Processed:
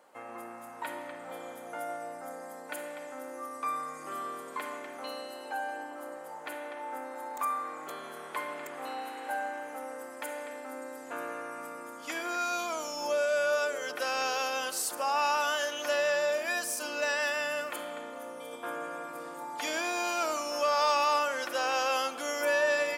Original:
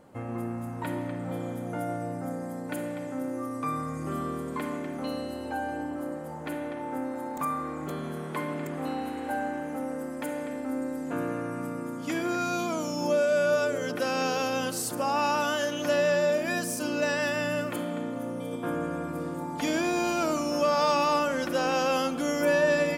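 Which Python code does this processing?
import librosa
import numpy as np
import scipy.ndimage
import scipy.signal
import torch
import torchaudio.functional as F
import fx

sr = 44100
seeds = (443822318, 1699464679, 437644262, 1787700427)

y = scipy.signal.sosfilt(scipy.signal.butter(2, 680.0, 'highpass', fs=sr, output='sos'), x)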